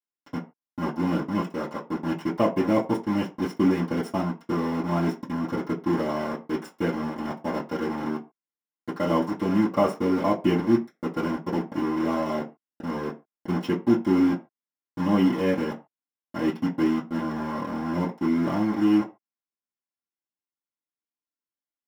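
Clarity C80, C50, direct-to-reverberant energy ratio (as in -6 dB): 19.5 dB, 15.0 dB, -9.5 dB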